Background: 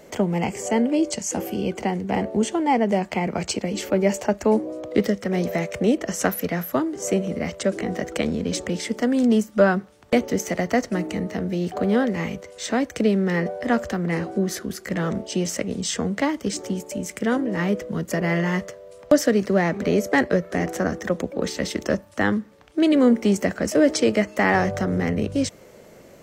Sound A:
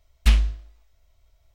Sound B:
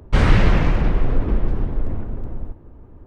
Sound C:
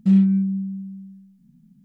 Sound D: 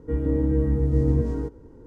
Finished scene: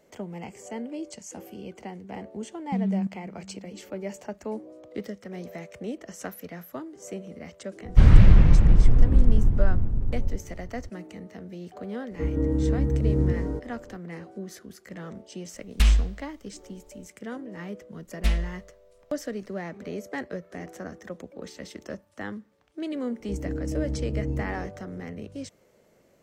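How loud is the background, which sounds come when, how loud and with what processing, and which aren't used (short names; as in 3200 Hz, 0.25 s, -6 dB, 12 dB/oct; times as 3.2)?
background -14.5 dB
2.66 add C -5.5 dB + level quantiser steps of 20 dB
7.84 add B -10.5 dB + tone controls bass +13 dB, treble +2 dB
12.11 add D -2 dB
15.54 add A -8.5 dB + maximiser +10.5 dB
17.98 add A -10 dB + comb 4.5 ms, depth 99%
23.2 add D -8.5 dB + steep low-pass 900 Hz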